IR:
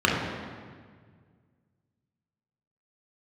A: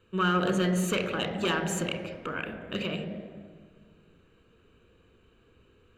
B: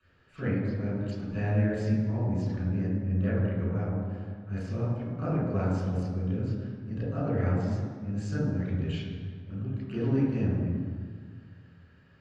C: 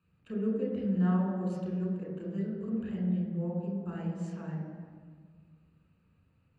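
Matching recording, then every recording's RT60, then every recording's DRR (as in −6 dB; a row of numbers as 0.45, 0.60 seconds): C; 1.7, 1.7, 1.7 seconds; 6.0, −11.5, −3.5 decibels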